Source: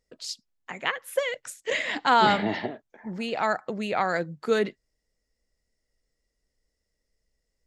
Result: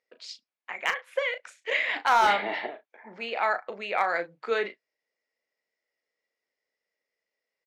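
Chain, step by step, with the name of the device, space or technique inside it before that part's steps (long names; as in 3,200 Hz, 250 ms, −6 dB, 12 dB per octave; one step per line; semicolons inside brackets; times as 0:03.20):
megaphone (band-pass filter 540–3,500 Hz; parametric band 2,300 Hz +6 dB 0.3 octaves; hard clipping −14.5 dBFS, distortion −17 dB; double-tracking delay 35 ms −9.5 dB)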